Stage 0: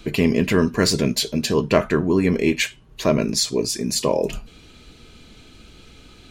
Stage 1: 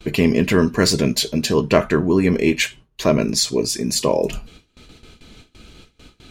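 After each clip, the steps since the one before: gate with hold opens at -35 dBFS; trim +2 dB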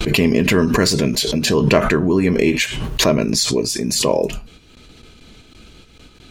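swell ahead of each attack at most 37 dB/s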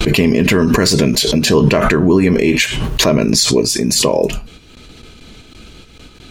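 loudness maximiser +7 dB; trim -1.5 dB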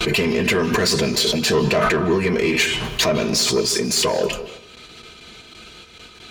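overdrive pedal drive 15 dB, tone 6.8 kHz, clips at -2 dBFS; comb of notches 280 Hz; on a send at -13.5 dB: reverberation RT60 0.70 s, pre-delay 147 ms; on the sum: trim -7 dB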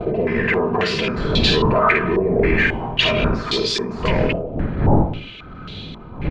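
wind noise 200 Hz -21 dBFS; early reflections 50 ms -4.5 dB, 68 ms -8.5 dB; step-sequenced low-pass 3.7 Hz 640–3700 Hz; trim -4 dB

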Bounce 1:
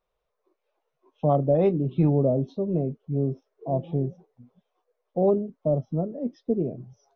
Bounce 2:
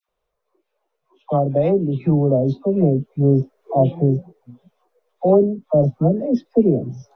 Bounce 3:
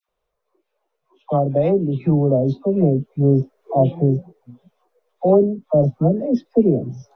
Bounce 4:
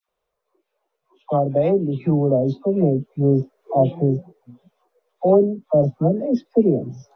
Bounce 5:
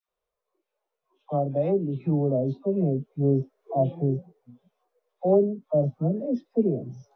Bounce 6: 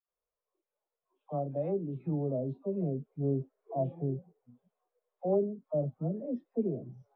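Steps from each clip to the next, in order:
phase dispersion lows, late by 91 ms, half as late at 980 Hz; gain riding within 5 dB 0.5 s; trim +7.5 dB
no audible change
bass shelf 120 Hz -7 dB
harmonic-percussive split percussive -8 dB; trim -5 dB
low-pass 2.1 kHz 12 dB/octave; trim -8.5 dB

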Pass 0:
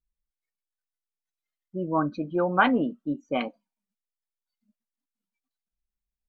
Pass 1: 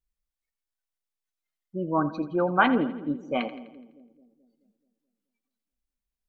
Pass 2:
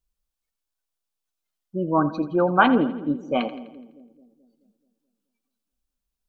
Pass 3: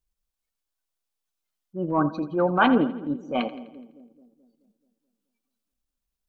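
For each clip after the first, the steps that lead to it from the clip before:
two-band feedback delay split 460 Hz, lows 215 ms, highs 84 ms, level -14 dB
peaking EQ 2 kHz -8.5 dB 0.37 oct; trim +4.5 dB
transient shaper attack -7 dB, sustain -3 dB

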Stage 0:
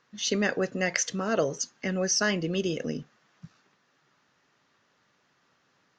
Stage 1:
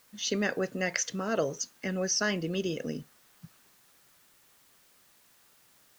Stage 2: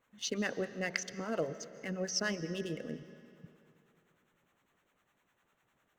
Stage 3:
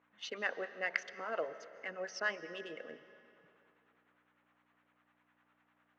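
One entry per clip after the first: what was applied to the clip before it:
word length cut 10-bit, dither triangular; trim -3 dB
local Wiener filter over 9 samples; harmonic tremolo 9.9 Hz, depth 70%, crossover 700 Hz; algorithmic reverb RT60 2.8 s, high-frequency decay 0.8×, pre-delay 100 ms, DRR 14 dB; trim -2.5 dB
hum 60 Hz, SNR 16 dB; band-pass 720–2300 Hz; trim +3.5 dB

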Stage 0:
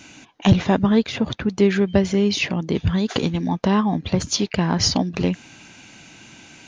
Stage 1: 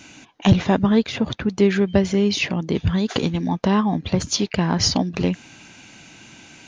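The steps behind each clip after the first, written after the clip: no audible change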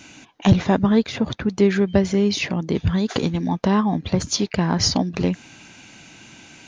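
dynamic bell 2.9 kHz, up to -4 dB, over -41 dBFS, Q 2.7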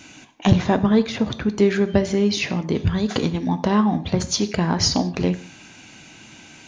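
gated-style reverb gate 210 ms falling, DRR 10.5 dB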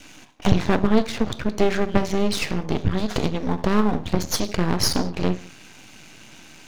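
half-wave rectifier; trim +2.5 dB

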